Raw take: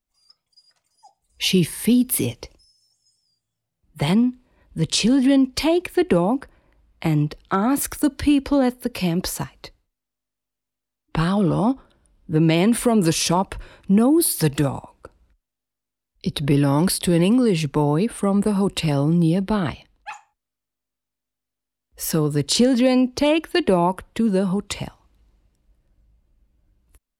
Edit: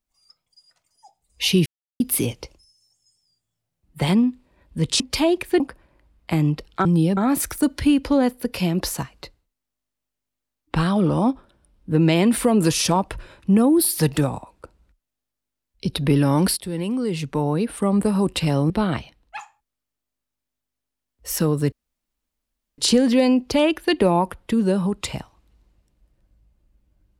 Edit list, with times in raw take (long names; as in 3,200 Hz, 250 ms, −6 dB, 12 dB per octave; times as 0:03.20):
0:01.66–0:02.00: silence
0:05.00–0:05.44: remove
0:06.04–0:06.33: remove
0:16.98–0:18.37: fade in linear, from −13 dB
0:19.11–0:19.43: move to 0:07.58
0:22.45: splice in room tone 1.06 s